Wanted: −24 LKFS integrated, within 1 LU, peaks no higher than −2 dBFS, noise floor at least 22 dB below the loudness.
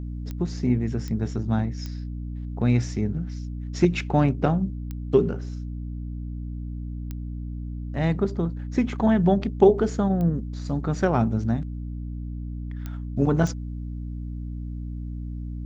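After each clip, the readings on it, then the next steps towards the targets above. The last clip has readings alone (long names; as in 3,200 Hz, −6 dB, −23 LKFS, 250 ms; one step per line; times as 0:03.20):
number of clicks 8; mains hum 60 Hz; hum harmonics up to 300 Hz; level of the hum −30 dBFS; integrated loudness −26.0 LKFS; sample peak −3.5 dBFS; target loudness −24.0 LKFS
→ click removal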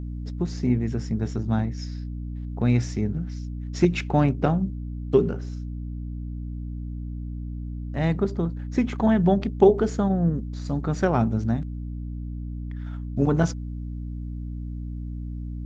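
number of clicks 0; mains hum 60 Hz; hum harmonics up to 300 Hz; level of the hum −30 dBFS
→ mains-hum notches 60/120/180/240/300 Hz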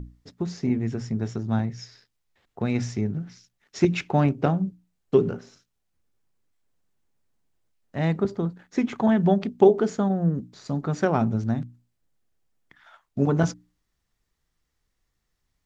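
mains hum none found; integrated loudness −25.0 LKFS; sample peak −3.5 dBFS; target loudness −24.0 LKFS
→ level +1 dB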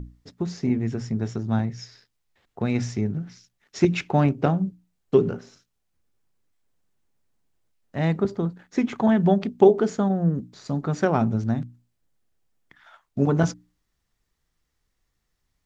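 integrated loudness −24.0 LKFS; sample peak −2.5 dBFS; background noise floor −76 dBFS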